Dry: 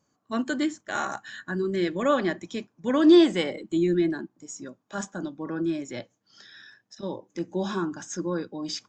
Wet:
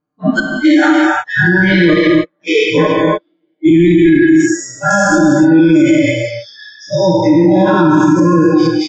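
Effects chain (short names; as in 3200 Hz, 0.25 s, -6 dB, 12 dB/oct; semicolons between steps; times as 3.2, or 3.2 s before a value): spectral dilation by 0.24 s; flipped gate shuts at -12 dBFS, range -39 dB; comb 6.6 ms, depth 79%; spectral noise reduction 30 dB; LPF 3600 Hz 12 dB/oct, from 7.29 s 1900 Hz; non-linear reverb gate 0.32 s flat, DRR 2 dB; maximiser +19 dB; mismatched tape noise reduction decoder only; gain -1 dB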